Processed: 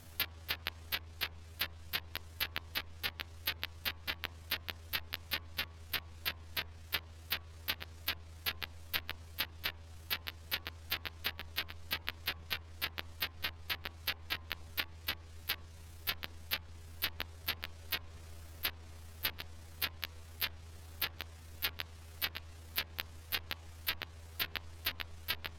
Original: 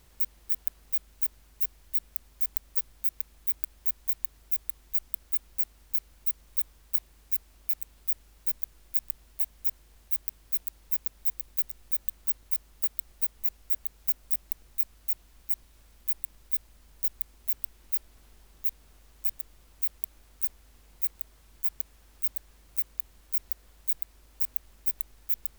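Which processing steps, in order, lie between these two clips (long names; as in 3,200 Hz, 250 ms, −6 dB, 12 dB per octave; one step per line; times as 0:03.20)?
pitch shift by two crossfaded delay taps +8.5 semitones
hum removal 86.81 Hz, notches 13
treble cut that deepens with the level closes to 2,100 Hz, closed at −28.5 dBFS
level +6.5 dB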